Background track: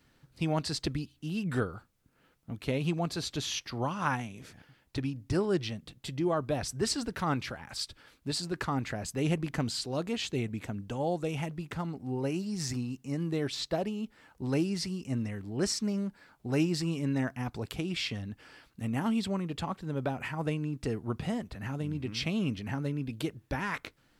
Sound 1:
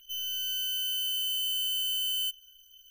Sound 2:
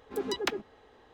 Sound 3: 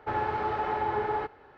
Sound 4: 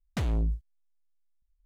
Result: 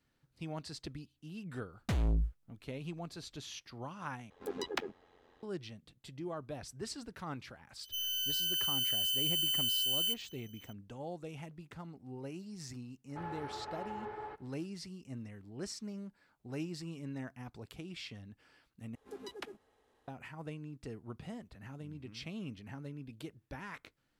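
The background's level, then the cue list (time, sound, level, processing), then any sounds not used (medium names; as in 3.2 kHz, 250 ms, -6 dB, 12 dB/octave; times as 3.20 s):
background track -12 dB
1.72 s: add 4 -3 dB
4.30 s: replace with 2 -3.5 dB + AM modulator 88 Hz, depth 55%
7.83 s: add 1 -2 dB
13.09 s: add 3 -14.5 dB
18.95 s: replace with 2 -14 dB + CVSD coder 64 kbps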